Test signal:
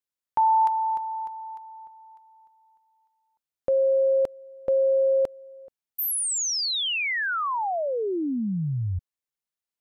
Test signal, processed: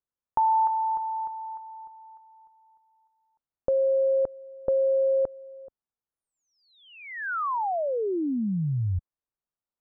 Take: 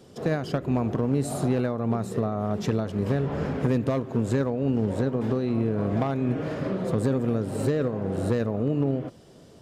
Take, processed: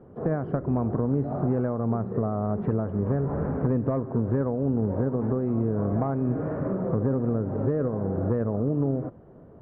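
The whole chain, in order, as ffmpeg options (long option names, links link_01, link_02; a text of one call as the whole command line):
ffmpeg -i in.wav -filter_complex "[0:a]lowpass=frequency=1400:width=0.5412,lowpass=frequency=1400:width=1.3066,lowshelf=frequency=67:gain=6.5,asplit=2[link_01][link_02];[link_02]acompressor=threshold=-32dB:ratio=6:attack=45:release=61:knee=1:detection=peak,volume=-2dB[link_03];[link_01][link_03]amix=inputs=2:normalize=0,volume=-4dB" out.wav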